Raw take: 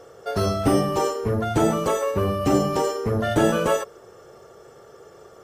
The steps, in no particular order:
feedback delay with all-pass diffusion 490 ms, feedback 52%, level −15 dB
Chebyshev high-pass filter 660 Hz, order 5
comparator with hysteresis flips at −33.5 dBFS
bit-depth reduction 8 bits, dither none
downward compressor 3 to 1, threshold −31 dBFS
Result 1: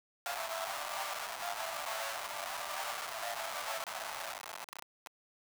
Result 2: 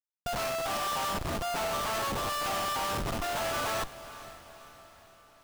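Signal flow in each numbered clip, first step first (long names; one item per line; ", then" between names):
feedback delay with all-pass diffusion, then downward compressor, then comparator with hysteresis, then Chebyshev high-pass filter, then bit-depth reduction
Chebyshev high-pass filter, then comparator with hysteresis, then bit-depth reduction, then downward compressor, then feedback delay with all-pass diffusion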